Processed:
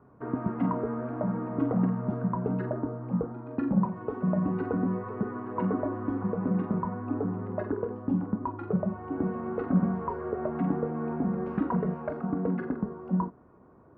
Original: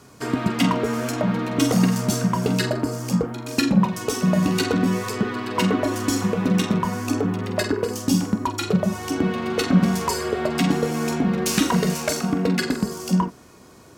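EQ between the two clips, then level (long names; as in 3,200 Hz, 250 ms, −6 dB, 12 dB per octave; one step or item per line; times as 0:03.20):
low-pass filter 1,300 Hz 24 dB per octave
−7.5 dB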